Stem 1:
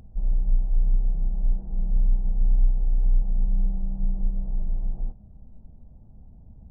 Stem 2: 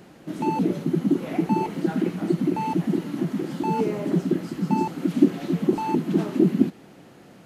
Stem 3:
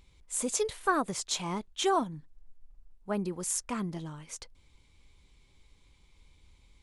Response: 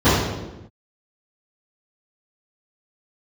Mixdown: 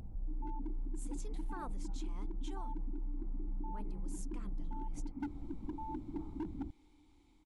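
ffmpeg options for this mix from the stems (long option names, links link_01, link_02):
-filter_complex "[0:a]alimiter=limit=-20.5dB:level=0:latency=1:release=359,volume=0dB[link_01];[1:a]asplit=3[link_02][link_03][link_04];[link_02]bandpass=frequency=300:width_type=q:width=8,volume=0dB[link_05];[link_03]bandpass=frequency=870:width_type=q:width=8,volume=-6dB[link_06];[link_04]bandpass=frequency=2240:width_type=q:width=8,volume=-9dB[link_07];[link_05][link_06][link_07]amix=inputs=3:normalize=0,highshelf=frequency=2100:width_type=q:width=3:gain=-13,asoftclip=type=hard:threshold=-21dB,volume=-13dB[link_08];[2:a]dynaudnorm=framelen=120:gausssize=3:maxgain=8.5dB,adelay=650,volume=-17.5dB[link_09];[link_01][link_09]amix=inputs=2:normalize=0,bandreject=frequency=640:width=12,acompressor=threshold=-32dB:ratio=6,volume=0dB[link_10];[link_08][link_10]amix=inputs=2:normalize=0,alimiter=level_in=8.5dB:limit=-24dB:level=0:latency=1:release=116,volume=-8.5dB"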